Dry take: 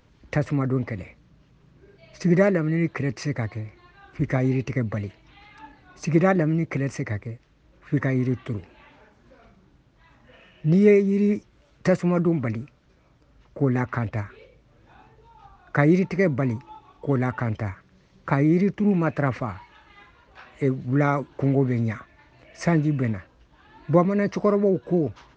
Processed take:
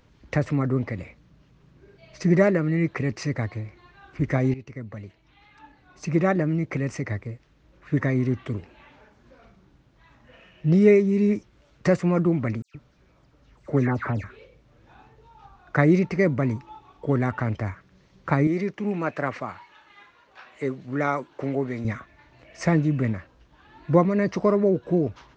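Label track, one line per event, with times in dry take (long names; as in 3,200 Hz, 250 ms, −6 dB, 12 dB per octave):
4.540000	7.980000	fade in equal-power, from −15 dB
12.620000	14.240000	all-pass dispersion lows, late by 126 ms, half as late at 2,500 Hz
18.470000	21.850000	high-pass filter 430 Hz 6 dB per octave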